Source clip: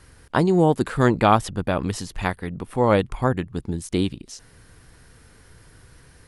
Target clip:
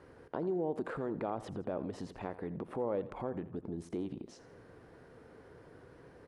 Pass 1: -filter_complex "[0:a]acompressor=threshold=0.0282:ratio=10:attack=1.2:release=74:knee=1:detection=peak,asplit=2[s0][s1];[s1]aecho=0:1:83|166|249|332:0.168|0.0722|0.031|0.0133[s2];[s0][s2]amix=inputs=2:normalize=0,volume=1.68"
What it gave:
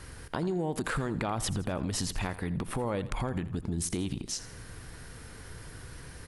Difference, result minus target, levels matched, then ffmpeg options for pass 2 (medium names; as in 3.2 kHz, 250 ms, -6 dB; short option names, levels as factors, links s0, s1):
500 Hz band -5.0 dB
-filter_complex "[0:a]acompressor=threshold=0.0282:ratio=10:attack=1.2:release=74:knee=1:detection=peak,bandpass=f=470:t=q:w=1.2:csg=0,asplit=2[s0][s1];[s1]aecho=0:1:83|166|249|332:0.168|0.0722|0.031|0.0133[s2];[s0][s2]amix=inputs=2:normalize=0,volume=1.68"